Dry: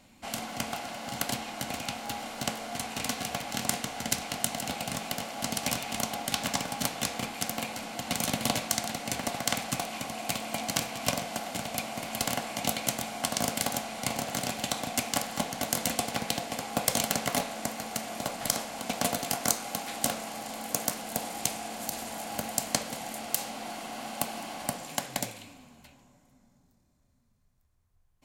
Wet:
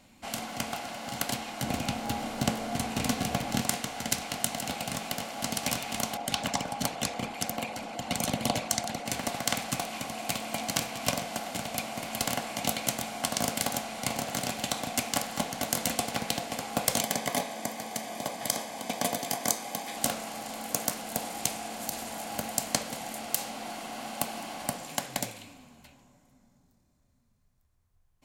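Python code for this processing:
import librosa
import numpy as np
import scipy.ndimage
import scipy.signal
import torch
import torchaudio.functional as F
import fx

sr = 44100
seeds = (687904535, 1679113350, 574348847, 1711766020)

y = fx.low_shelf(x, sr, hz=470.0, db=10.0, at=(1.62, 3.62))
y = fx.envelope_sharpen(y, sr, power=1.5, at=(6.17, 9.06))
y = fx.notch_comb(y, sr, f0_hz=1400.0, at=(17.0, 19.97))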